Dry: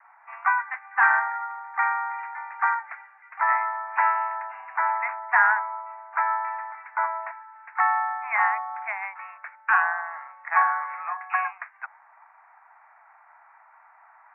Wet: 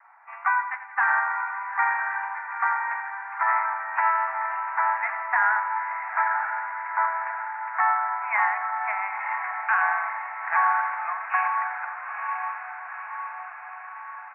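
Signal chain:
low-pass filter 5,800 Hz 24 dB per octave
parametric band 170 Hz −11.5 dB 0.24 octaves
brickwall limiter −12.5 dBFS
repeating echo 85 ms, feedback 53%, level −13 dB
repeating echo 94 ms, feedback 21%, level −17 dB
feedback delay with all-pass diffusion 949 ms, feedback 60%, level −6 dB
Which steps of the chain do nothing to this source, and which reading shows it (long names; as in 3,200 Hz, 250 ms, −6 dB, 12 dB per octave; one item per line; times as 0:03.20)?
low-pass filter 5,800 Hz: nothing at its input above 2,600 Hz
parametric band 170 Hz: nothing at its input below 600 Hz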